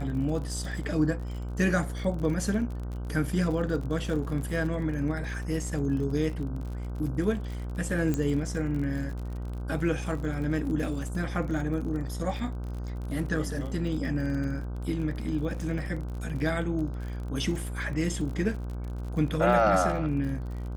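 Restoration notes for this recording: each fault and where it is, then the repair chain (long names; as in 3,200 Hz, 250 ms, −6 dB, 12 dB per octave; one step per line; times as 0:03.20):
mains buzz 60 Hz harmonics 26 −34 dBFS
surface crackle 50 per second −36 dBFS
0:08.14: click −16 dBFS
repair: click removal
hum removal 60 Hz, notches 26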